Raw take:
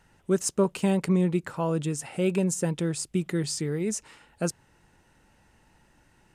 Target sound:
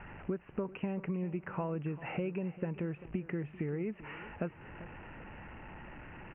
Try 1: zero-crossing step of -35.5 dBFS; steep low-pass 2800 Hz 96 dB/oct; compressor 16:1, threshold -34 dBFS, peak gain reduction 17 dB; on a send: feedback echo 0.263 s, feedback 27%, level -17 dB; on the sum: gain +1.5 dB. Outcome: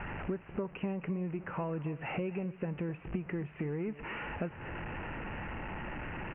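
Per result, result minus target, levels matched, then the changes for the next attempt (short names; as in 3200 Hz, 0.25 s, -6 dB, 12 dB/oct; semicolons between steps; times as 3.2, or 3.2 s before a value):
echo 0.129 s early; zero-crossing step: distortion +9 dB
change: feedback echo 0.392 s, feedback 27%, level -17 dB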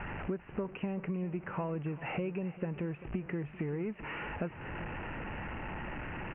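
zero-crossing step: distortion +9 dB
change: zero-crossing step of -45.5 dBFS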